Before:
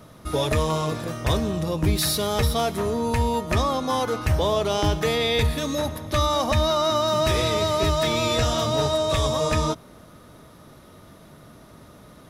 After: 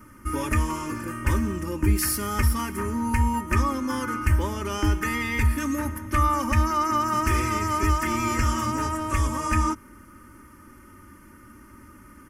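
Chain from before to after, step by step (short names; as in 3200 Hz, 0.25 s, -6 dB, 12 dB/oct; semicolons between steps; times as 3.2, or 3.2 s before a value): fixed phaser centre 1600 Hz, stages 4; comb 3.3 ms, depth 81%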